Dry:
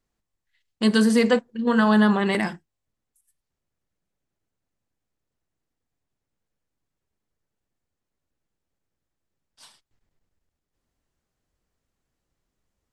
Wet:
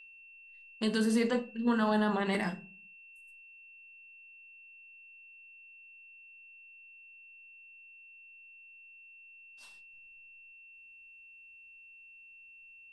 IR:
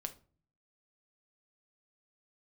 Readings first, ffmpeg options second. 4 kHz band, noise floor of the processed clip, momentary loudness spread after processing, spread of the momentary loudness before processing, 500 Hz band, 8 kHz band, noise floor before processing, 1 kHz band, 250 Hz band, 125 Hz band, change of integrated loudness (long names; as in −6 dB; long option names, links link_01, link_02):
−9.5 dB, −55 dBFS, 7 LU, 7 LU, −9.5 dB, −8.5 dB, −83 dBFS, −8.5 dB, −10.0 dB, −10.5 dB, −10.0 dB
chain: -filter_complex "[0:a]alimiter=limit=-13dB:level=0:latency=1,aeval=exprs='val(0)+0.00708*sin(2*PI*2700*n/s)':channel_layout=same,bandreject=frequency=50:width_type=h:width=6,bandreject=frequency=100:width_type=h:width=6,bandreject=frequency=150:width_type=h:width=6,bandreject=frequency=200:width_type=h:width=6[link_01];[1:a]atrim=start_sample=2205,asetrate=52920,aresample=44100[link_02];[link_01][link_02]afir=irnorm=-1:irlink=0,volume=-3.5dB"